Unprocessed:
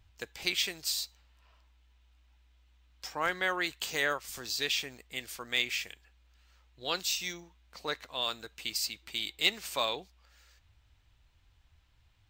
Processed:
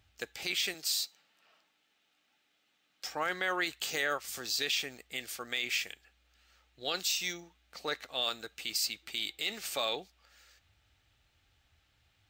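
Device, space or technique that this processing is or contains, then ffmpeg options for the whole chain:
PA system with an anti-feedback notch: -filter_complex "[0:a]asettb=1/sr,asplit=3[link_01][link_02][link_03];[link_01]atrim=end=0.744[link_04];[link_02]atrim=start=0.74:end=3.07,asetpts=PTS-STARTPTS,afade=type=in:duration=0.004:curve=qsin,afade=type=out:start_time=2.326:duration=0.004:curve=qsin,highpass=frequency=160:width=0.5412,highpass=frequency=160:width=1.3066[link_05];[link_03]atrim=start=3.066[link_06];[link_04][link_05]acrossfade=duration=0.004:curve1=hsin:curve2=qsin[link_07];[link_07][link_06]acrossfade=duration=0.004:curve1=qsin:curve2=hsin,highpass=frequency=180:poles=1,asuperstop=centerf=1000:order=4:qfactor=6.5,alimiter=limit=-23dB:level=0:latency=1:release=23,volume=2dB"

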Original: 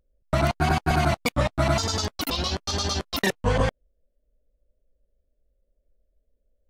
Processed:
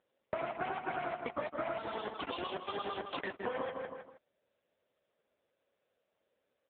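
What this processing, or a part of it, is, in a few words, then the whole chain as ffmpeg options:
voicemail: -filter_complex "[0:a]highpass=320,lowpass=3100,asplit=2[link_01][link_02];[link_02]adelay=159,lowpass=frequency=2900:poles=1,volume=-9.5dB,asplit=2[link_03][link_04];[link_04]adelay=159,lowpass=frequency=2900:poles=1,volume=0.3,asplit=2[link_05][link_06];[link_06]adelay=159,lowpass=frequency=2900:poles=1,volume=0.3[link_07];[link_01][link_03][link_05][link_07]amix=inputs=4:normalize=0,acompressor=threshold=-33dB:ratio=12,volume=1.5dB" -ar 8000 -c:a libopencore_amrnb -b:a 6700

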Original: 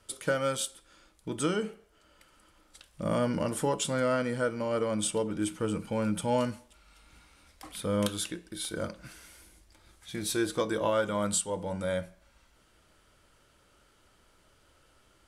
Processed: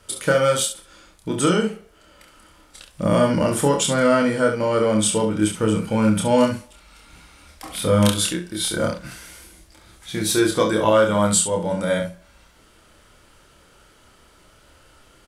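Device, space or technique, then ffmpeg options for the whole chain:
slapback doubling: -filter_complex "[0:a]asplit=3[link_01][link_02][link_03];[link_02]adelay=28,volume=-3.5dB[link_04];[link_03]adelay=68,volume=-8dB[link_05];[link_01][link_04][link_05]amix=inputs=3:normalize=0,asettb=1/sr,asplit=3[link_06][link_07][link_08];[link_06]atrim=end=7.714[link_09];[link_07]atrim=start=7.71:end=8.99,asetpts=PTS-STARTPTS,afade=type=in:duration=0.004:curve=qsin,afade=type=out:start_time=1.276:duration=0.004:curve=qsin,asplit=2[link_10][link_11];[link_11]adelay=28,volume=-9dB[link_12];[link_10][link_12]amix=inputs=2:normalize=0,atrim=end_sample=56448[link_13];[link_08]atrim=start=8.986[link_14];[link_09][link_13]acrossfade=duration=0.004:curve1=hsin:curve2=qsin[link_15];[link_15][link_14]acrossfade=duration=0.004:curve1=qsin:curve2=hsin,volume=9dB"

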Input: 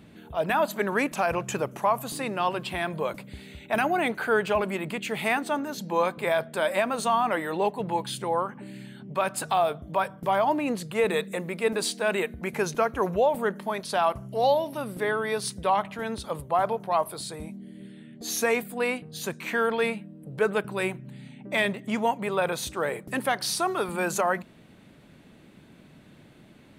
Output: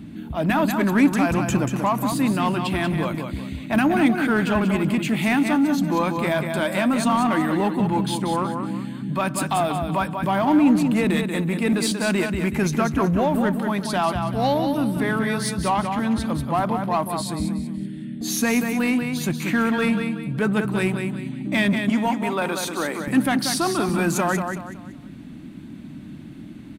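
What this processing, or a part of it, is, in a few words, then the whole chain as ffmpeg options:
parallel distortion: -filter_complex "[0:a]asettb=1/sr,asplit=3[link_01][link_02][link_03];[link_01]atrim=end=21.894[link_04];[link_02]atrim=start=21.89:end=23,asetpts=PTS-STARTPTS,afade=type=in:duration=0.004:curve=qsin,afade=type=out:start_time=1.106:duration=0.004:curve=qsin,highpass=310[link_05];[link_03]atrim=start=22.996[link_06];[link_04][link_05]acrossfade=duration=0.004:curve1=hsin:curve2=qsin[link_07];[link_07][link_06]acrossfade=duration=0.004:curve1=qsin:curve2=hsin,lowshelf=frequency=360:width_type=q:width=3:gain=7,aecho=1:1:187|374|561|748:0.447|0.147|0.0486|0.0161,asplit=2[link_08][link_09];[link_09]asoftclip=type=hard:threshold=-24dB,volume=-4.5dB[link_10];[link_08][link_10]amix=inputs=2:normalize=0"

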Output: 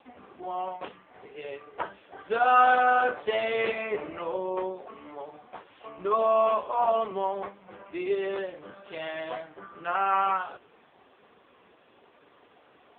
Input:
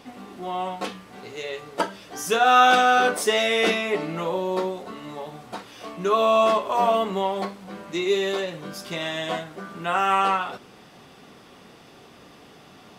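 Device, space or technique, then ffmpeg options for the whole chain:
telephone: -af "highpass=330,lowpass=3000,volume=-3dB" -ar 8000 -c:a libopencore_amrnb -b:a 5150

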